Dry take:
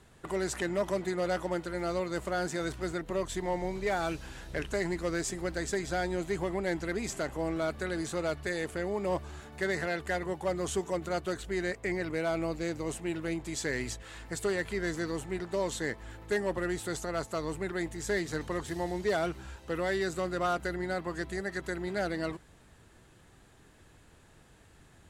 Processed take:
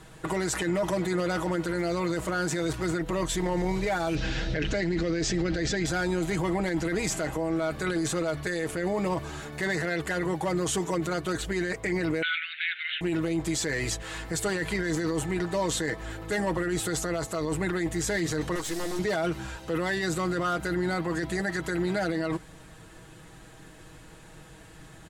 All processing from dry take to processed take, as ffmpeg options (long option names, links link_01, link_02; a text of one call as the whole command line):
ffmpeg -i in.wav -filter_complex "[0:a]asettb=1/sr,asplit=3[link_01][link_02][link_03];[link_01]atrim=end=4.154[link_04];[link_02]atrim=start=4.15:end=5.86,asetpts=PTS-STARTPTS,afade=type=in:duration=0.004:curve=qsin,afade=type=out:start_time=1.706:duration=0.004:curve=qsin,lowpass=frequency=5500:width=0.5412,lowpass=frequency=5500:width=1.3066,equalizer=frequency=990:width_type=o:width=0.77:gain=-10,acontrast=70[link_05];[link_03]atrim=start=5.856[link_06];[link_04][link_05]acrossfade=duration=0.004:curve1=hsin:curve2=qsin[link_07];[link_07][link_06]acrossfade=duration=0.004:curve1=qsin:curve2=hsin,asettb=1/sr,asplit=3[link_08][link_09][link_10];[link_08]atrim=end=12.224[link_11];[link_09]atrim=start=12.22:end=13.01,asetpts=PTS-STARTPTS,afade=type=in:duration=0.004:curve=qsin,afade=type=out:start_time=0.786:duration=0.004:curve=qsin,highshelf=frequency=2800:gain=11.5,acontrast=48,asuperpass=centerf=2300:order=20:qfactor=1[link_12];[link_10]atrim=start=13.006[link_13];[link_11][link_12]acrossfade=duration=0.004:curve1=hsin:curve2=qsin[link_14];[link_14][link_13]acrossfade=duration=0.004:curve1=qsin:curve2=hsin,asettb=1/sr,asplit=3[link_15][link_16][link_17];[link_15]atrim=end=18.554[link_18];[link_16]atrim=start=18.55:end=18.99,asetpts=PTS-STARTPTS,afade=type=in:duration=0.004:curve=qsin,afade=type=out:start_time=0.436:duration=0.004:curve=qsin,acrossover=split=7200[link_19][link_20];[link_20]acompressor=threshold=-58dB:ratio=4:attack=1:release=60[link_21];[link_19][link_21]amix=inputs=2:normalize=0,bass=frequency=250:gain=-7,treble=frequency=4000:gain=10,aeval=exprs='(tanh(79.4*val(0)+0.65)-tanh(0.65))/79.4':channel_layout=same[link_22];[link_17]atrim=start=18.986[link_23];[link_18][link_22]acrossfade=duration=0.004:curve1=hsin:curve2=qsin[link_24];[link_24][link_23]acrossfade=duration=0.004:curve1=qsin:curve2=hsin,aecho=1:1:6.3:0.62,alimiter=level_in=4.5dB:limit=-24dB:level=0:latency=1:release=13,volume=-4.5dB,volume=8.5dB" out.wav